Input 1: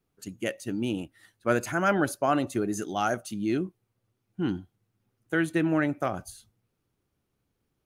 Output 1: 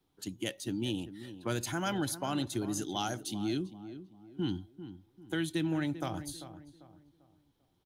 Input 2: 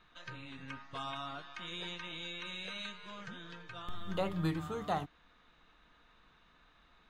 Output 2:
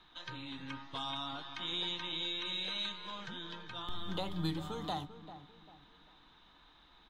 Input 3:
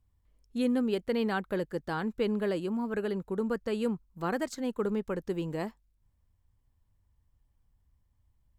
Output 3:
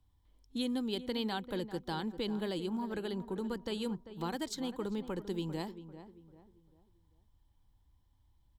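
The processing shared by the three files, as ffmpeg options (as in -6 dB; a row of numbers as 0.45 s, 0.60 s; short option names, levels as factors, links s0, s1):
-filter_complex "[0:a]superequalizer=6b=1.78:9b=2:13b=2.51:14b=1.41,acrossover=split=160|3000[s0][s1][s2];[s1]acompressor=threshold=0.01:ratio=2.5[s3];[s0][s3][s2]amix=inputs=3:normalize=0,asplit=2[s4][s5];[s5]adelay=394,lowpass=f=1500:p=1,volume=0.251,asplit=2[s6][s7];[s7]adelay=394,lowpass=f=1500:p=1,volume=0.37,asplit=2[s8][s9];[s9]adelay=394,lowpass=f=1500:p=1,volume=0.37,asplit=2[s10][s11];[s11]adelay=394,lowpass=f=1500:p=1,volume=0.37[s12];[s4][s6][s8][s10][s12]amix=inputs=5:normalize=0"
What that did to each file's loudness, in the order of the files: -6.5 LU, +2.0 LU, -5.5 LU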